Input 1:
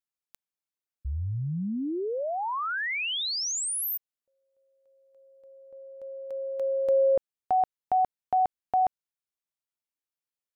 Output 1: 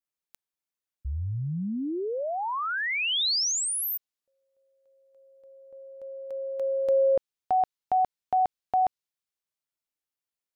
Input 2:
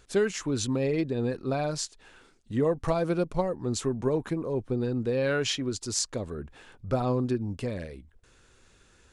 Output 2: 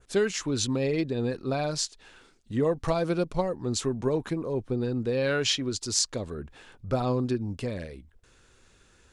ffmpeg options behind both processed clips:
ffmpeg -i in.wav -af "adynamicequalizer=threshold=0.00447:dfrequency=4300:dqfactor=0.86:tfrequency=4300:tqfactor=0.86:attack=5:release=100:ratio=0.375:range=2.5:mode=boostabove:tftype=bell" out.wav

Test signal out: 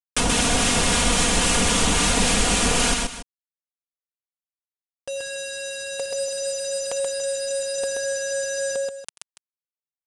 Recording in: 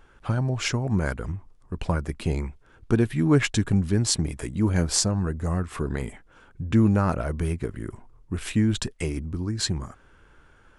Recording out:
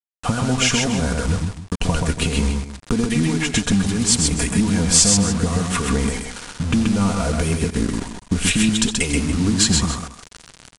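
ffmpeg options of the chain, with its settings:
ffmpeg -i in.wav -filter_complex "[0:a]lowshelf=frequency=160:gain=6,asplit=2[link_01][link_02];[link_02]highpass=frequency=720:poles=1,volume=20dB,asoftclip=type=tanh:threshold=-3dB[link_03];[link_01][link_03]amix=inputs=2:normalize=0,lowpass=frequency=1400:poles=1,volume=-6dB,aecho=1:1:4.2:0.63,dynaudnorm=framelen=110:gausssize=3:maxgain=4dB,alimiter=limit=-8dB:level=0:latency=1:release=160,acompressor=threshold=-22dB:ratio=8,aexciter=amount=1.4:drive=7.7:freq=2500,acrossover=split=1100[link_04][link_05];[link_04]aeval=exprs='val(0)*(1-0.5/2+0.5/2*cos(2*PI*3.7*n/s))':channel_layout=same[link_06];[link_05]aeval=exprs='val(0)*(1-0.5/2-0.5/2*cos(2*PI*3.7*n/s))':channel_layout=same[link_07];[link_06][link_07]amix=inputs=2:normalize=0,acrusher=bits=5:mix=0:aa=0.000001,bass=frequency=250:gain=8,treble=frequency=4000:gain=7,asplit=2[link_08][link_09];[link_09]aecho=0:1:87|130|285:0.126|0.668|0.2[link_10];[link_08][link_10]amix=inputs=2:normalize=0,aresample=22050,aresample=44100,volume=2dB" out.wav

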